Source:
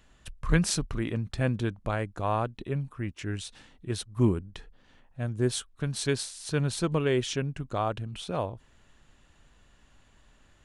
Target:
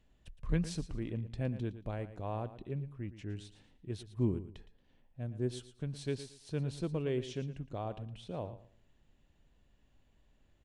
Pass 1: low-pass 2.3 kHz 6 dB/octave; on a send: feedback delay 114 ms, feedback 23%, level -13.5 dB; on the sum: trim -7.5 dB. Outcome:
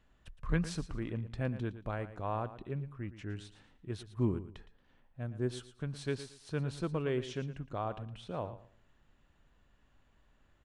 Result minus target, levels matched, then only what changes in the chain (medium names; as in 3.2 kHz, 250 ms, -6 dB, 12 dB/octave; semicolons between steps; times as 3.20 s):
1 kHz band +4.5 dB
add after low-pass: peaking EQ 1.3 kHz -10 dB 1.1 oct